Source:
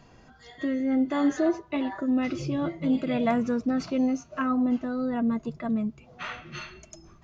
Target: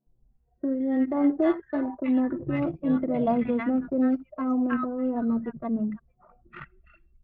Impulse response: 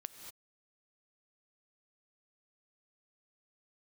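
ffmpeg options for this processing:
-filter_complex "[0:a]acrossover=split=190|1100[link_01][link_02][link_03];[link_01]adelay=70[link_04];[link_03]adelay=320[link_05];[link_04][link_02][link_05]amix=inputs=3:normalize=0,acrossover=split=2600[link_06][link_07];[link_07]acompressor=threshold=-60dB:ratio=4:attack=1:release=60[link_08];[link_06][link_08]amix=inputs=2:normalize=0,anlmdn=6.31,volume=2.5dB"

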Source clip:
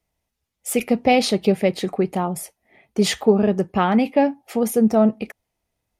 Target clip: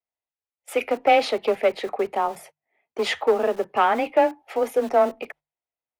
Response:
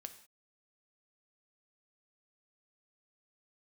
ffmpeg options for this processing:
-filter_complex "[0:a]asplit=2[link_01][link_02];[link_02]aeval=exprs='0.237*(abs(mod(val(0)/0.237+3,4)-2)-1)':channel_layout=same,volume=-8.5dB[link_03];[link_01][link_03]amix=inputs=2:normalize=0,acrossover=split=380 3200:gain=0.141 1 0.141[link_04][link_05][link_06];[link_04][link_05][link_06]amix=inputs=3:normalize=0,afreqshift=18,acrossover=split=220|2400[link_07][link_08][link_09];[link_07]aeval=exprs='(mod(141*val(0)+1,2)-1)/141':channel_layout=same[link_10];[link_10][link_08][link_09]amix=inputs=3:normalize=0,agate=range=-18dB:threshold=-45dB:ratio=16:detection=peak,bandreject=frequency=50:width_type=h:width=6,bandreject=frequency=100:width_type=h:width=6,bandreject=frequency=150:width_type=h:width=6"

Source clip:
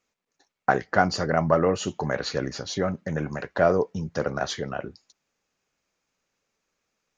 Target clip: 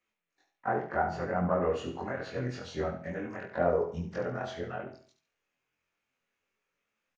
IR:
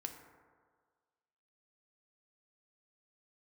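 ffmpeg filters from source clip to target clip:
-filter_complex "[0:a]afftfilt=real='re':imag='-im':win_size=2048:overlap=0.75,highshelf=frequency=3600:width_type=q:width=1.5:gain=-7.5,bandreject=frequency=162.6:width_type=h:width=4,bandreject=frequency=325.2:width_type=h:width=4,bandreject=frequency=487.8:width_type=h:width=4,bandreject=frequency=650.4:width_type=h:width=4,bandreject=frequency=813:width_type=h:width=4,acrossover=split=1300[link_01][link_02];[link_01]flanger=delay=7.3:depth=9.3:regen=43:speed=0.81:shape=triangular[link_03];[link_02]acompressor=threshold=-46dB:ratio=12[link_04];[link_03][link_04]amix=inputs=2:normalize=0,asplit=2[link_05][link_06];[link_06]asetrate=55563,aresample=44100,atempo=0.793701,volume=-17dB[link_07];[link_05][link_07]amix=inputs=2:normalize=0,asplit=2[link_08][link_09];[link_09]aecho=0:1:71|142|213|284:0.355|0.117|0.0386|0.0128[link_10];[link_08][link_10]amix=inputs=2:normalize=0,volume=1dB"

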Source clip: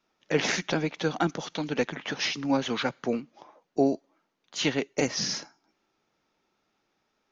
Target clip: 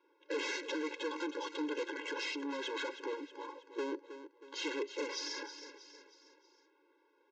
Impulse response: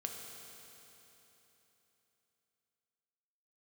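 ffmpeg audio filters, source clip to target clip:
-filter_complex "[0:a]adynamicsmooth=sensitivity=5:basefreq=2300,aeval=exprs='(tanh(63.1*val(0)+0.2)-tanh(0.2))/63.1':channel_layout=same,asplit=2[link_01][link_02];[link_02]aecho=0:1:318|636|954|1272:0.141|0.0664|0.0312|0.0147[link_03];[link_01][link_03]amix=inputs=2:normalize=0,aresample=16000,aresample=44100,alimiter=level_in=15dB:limit=-24dB:level=0:latency=1:release=19,volume=-15dB,afftfilt=real='re*eq(mod(floor(b*sr/1024/280),2),1)':imag='im*eq(mod(floor(b*sr/1024/280),2),1)':win_size=1024:overlap=0.75,volume=9.5dB"

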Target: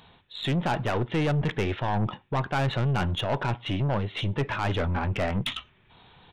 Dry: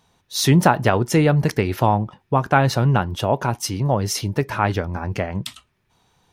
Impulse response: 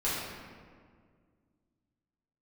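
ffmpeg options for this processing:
-filter_complex "[0:a]aemphasis=mode=production:type=75kf,areverse,acompressor=threshold=-25dB:ratio=10,areverse,aresample=8000,aresample=44100,aeval=exprs='0.188*(cos(1*acos(clip(val(0)/0.188,-1,1)))-cos(1*PI/2))+0.0299*(cos(4*acos(clip(val(0)/0.188,-1,1)))-cos(4*PI/2))':channel_layout=same,asplit=2[link_01][link_02];[1:a]atrim=start_sample=2205,afade=type=out:start_time=0.17:duration=0.01,atrim=end_sample=7938[link_03];[link_02][link_03]afir=irnorm=-1:irlink=0,volume=-32.5dB[link_04];[link_01][link_04]amix=inputs=2:normalize=0,asoftclip=type=tanh:threshold=-27.5dB,volume=7dB"

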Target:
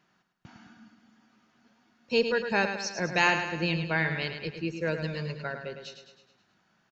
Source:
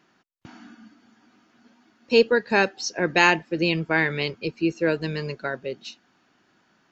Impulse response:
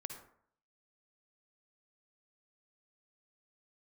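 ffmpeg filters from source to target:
-filter_complex "[0:a]firequalizer=gain_entry='entry(190,0);entry(280,-9);entry(580,-3)':delay=0.05:min_phase=1,asplit=2[link_01][link_02];[link_02]aecho=0:1:106|212|318|424|530|636:0.398|0.215|0.116|0.0627|0.0339|0.0183[link_03];[link_01][link_03]amix=inputs=2:normalize=0,volume=-3dB"

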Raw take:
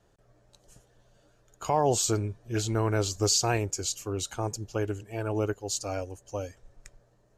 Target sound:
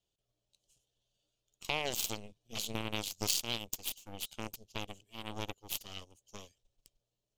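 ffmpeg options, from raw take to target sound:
ffmpeg -i in.wav -af "aeval=exprs='0.224*(cos(1*acos(clip(val(0)/0.224,-1,1)))-cos(1*PI/2))+0.0794*(cos(3*acos(clip(val(0)/0.224,-1,1)))-cos(3*PI/2))+0.0251*(cos(4*acos(clip(val(0)/0.224,-1,1)))-cos(4*PI/2))':channel_layout=same,highshelf=frequency=2300:width_type=q:width=3:gain=10,acompressor=threshold=-33dB:ratio=2.5" out.wav

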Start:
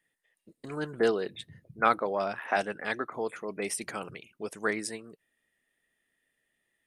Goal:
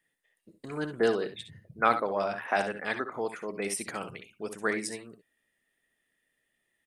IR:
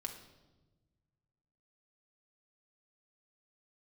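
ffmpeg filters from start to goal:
-af "aecho=1:1:60|70:0.251|0.224"

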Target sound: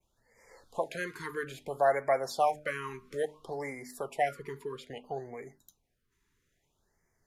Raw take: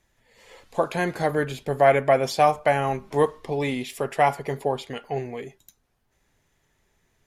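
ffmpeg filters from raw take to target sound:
ffmpeg -i in.wav -filter_complex "[0:a]asettb=1/sr,asplit=3[link_01][link_02][link_03];[link_01]atrim=end=4.314[link_04];[link_02]atrim=start=4.31:end=5.34,asetpts=PTS-STARTPTS,afade=type=in:duration=0.004:curve=qsin,afade=type=out:start_time=1.026:duration=0.004:curve=qsin,tiltshelf=frequency=810:gain=3.5[link_05];[link_03]atrim=start=5.336[link_06];[link_04][link_05]acrossfade=duration=0.004:curve1=hsin:curve2=qsin[link_07];[link_07][link_06]acrossfade=duration=0.004:curve1=qsin:curve2=hsin,bandreject=frequency=50:width_type=h:width=6,bandreject=frequency=100:width_type=h:width=6,bandreject=frequency=150:width_type=h:width=6,bandreject=frequency=200:width_type=h:width=6,bandreject=frequency=250:width_type=h:width=6,bandreject=frequency=300:width_type=h:width=6,adynamicequalizer=threshold=0.00708:dfrequency=4200:dqfactor=0.94:tfrequency=4200:tqfactor=0.94:attack=5:release=100:ratio=0.375:range=2:mode=cutabove:tftype=bell,acrossover=split=450[link_08][link_09];[link_08]acompressor=threshold=-38dB:ratio=6[link_10];[link_10][link_09]amix=inputs=2:normalize=0,afftfilt=real='re*(1-between(b*sr/1024,610*pow(3400/610,0.5+0.5*sin(2*PI*0.6*pts/sr))/1.41,610*pow(3400/610,0.5+0.5*sin(2*PI*0.6*pts/sr))*1.41))':imag='im*(1-between(b*sr/1024,610*pow(3400/610,0.5+0.5*sin(2*PI*0.6*pts/sr))/1.41,610*pow(3400/610,0.5+0.5*sin(2*PI*0.6*pts/sr))*1.41))':win_size=1024:overlap=0.75,volume=-7dB" out.wav

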